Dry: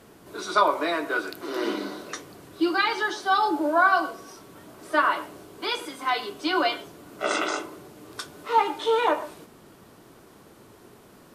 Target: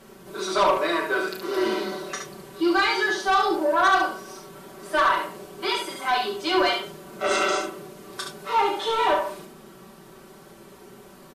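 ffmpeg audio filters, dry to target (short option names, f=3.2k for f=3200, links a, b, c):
-filter_complex "[0:a]aecho=1:1:5.2:0.9,asoftclip=type=tanh:threshold=-15dB,asplit=2[a][b];[b]aecho=0:1:32|70:0.376|0.562[c];[a][c]amix=inputs=2:normalize=0"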